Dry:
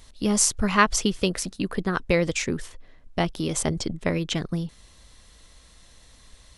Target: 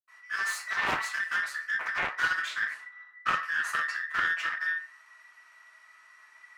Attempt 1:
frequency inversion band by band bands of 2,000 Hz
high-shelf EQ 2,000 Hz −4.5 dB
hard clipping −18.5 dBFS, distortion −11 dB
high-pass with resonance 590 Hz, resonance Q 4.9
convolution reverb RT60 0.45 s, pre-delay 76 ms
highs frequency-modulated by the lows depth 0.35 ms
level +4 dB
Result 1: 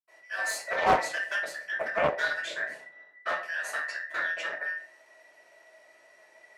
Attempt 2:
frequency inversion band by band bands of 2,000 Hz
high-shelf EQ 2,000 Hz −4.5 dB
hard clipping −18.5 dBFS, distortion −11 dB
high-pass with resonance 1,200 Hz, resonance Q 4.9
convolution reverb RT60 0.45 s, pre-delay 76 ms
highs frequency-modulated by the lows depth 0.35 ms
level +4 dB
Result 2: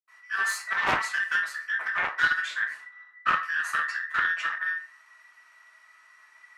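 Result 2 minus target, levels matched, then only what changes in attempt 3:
hard clipping: distortion −5 dB
change: hard clipping −25 dBFS, distortion −6 dB

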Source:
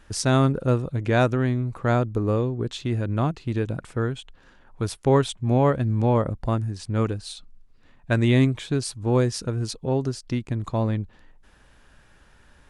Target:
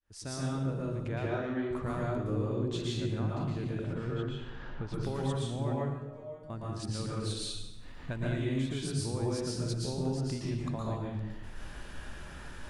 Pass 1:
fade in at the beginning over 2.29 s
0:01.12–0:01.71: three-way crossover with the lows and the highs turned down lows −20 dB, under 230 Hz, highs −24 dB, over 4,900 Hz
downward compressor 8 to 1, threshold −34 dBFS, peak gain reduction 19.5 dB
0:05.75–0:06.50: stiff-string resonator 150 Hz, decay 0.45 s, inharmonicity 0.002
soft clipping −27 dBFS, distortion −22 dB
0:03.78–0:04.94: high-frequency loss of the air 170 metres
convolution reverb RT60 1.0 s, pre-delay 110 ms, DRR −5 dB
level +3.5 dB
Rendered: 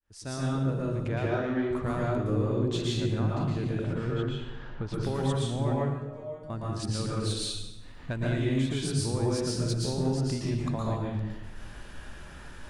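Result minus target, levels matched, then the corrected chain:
downward compressor: peak gain reduction −5 dB
fade in at the beginning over 2.29 s
0:01.12–0:01.71: three-way crossover with the lows and the highs turned down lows −20 dB, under 230 Hz, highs −24 dB, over 4,900 Hz
downward compressor 8 to 1, threshold −40 dBFS, peak gain reduction 24.5 dB
0:05.75–0:06.50: stiff-string resonator 150 Hz, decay 0.45 s, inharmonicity 0.002
soft clipping −27 dBFS, distortion −31 dB
0:03.78–0:04.94: high-frequency loss of the air 170 metres
convolution reverb RT60 1.0 s, pre-delay 110 ms, DRR −5 dB
level +3.5 dB

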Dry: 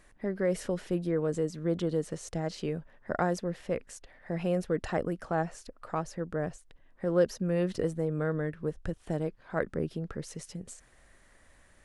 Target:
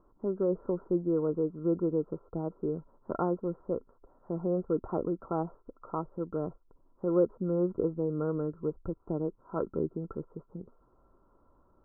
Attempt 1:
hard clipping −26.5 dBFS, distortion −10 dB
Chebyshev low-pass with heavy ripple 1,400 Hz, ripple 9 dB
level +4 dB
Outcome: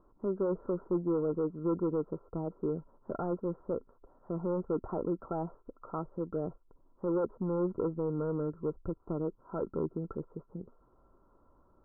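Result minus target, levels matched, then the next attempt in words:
hard clipping: distortion +32 dB
hard clipping −14.5 dBFS, distortion −42 dB
Chebyshev low-pass with heavy ripple 1,400 Hz, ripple 9 dB
level +4 dB

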